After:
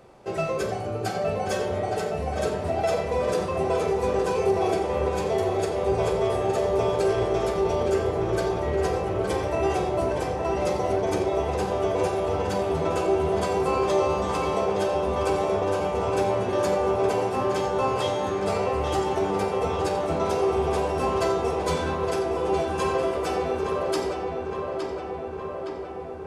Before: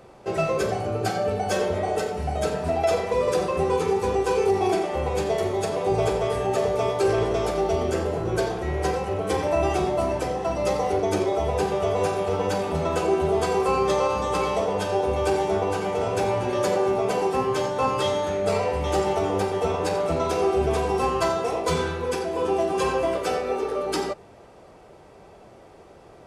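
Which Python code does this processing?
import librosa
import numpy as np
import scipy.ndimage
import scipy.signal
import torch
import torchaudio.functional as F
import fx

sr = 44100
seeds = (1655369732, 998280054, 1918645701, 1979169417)

y = fx.echo_filtered(x, sr, ms=865, feedback_pct=72, hz=3400.0, wet_db=-5.0)
y = F.gain(torch.from_numpy(y), -3.0).numpy()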